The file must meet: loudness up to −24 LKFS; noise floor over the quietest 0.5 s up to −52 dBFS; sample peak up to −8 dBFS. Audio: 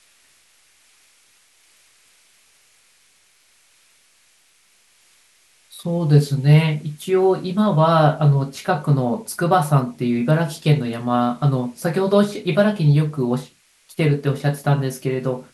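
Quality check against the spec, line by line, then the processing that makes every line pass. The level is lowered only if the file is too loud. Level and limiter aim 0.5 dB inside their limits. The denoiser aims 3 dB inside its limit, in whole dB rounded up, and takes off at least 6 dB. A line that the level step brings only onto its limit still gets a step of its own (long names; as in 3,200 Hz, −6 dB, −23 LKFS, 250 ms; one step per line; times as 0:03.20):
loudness −19.0 LKFS: out of spec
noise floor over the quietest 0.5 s −58 dBFS: in spec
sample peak −3.0 dBFS: out of spec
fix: level −5.5 dB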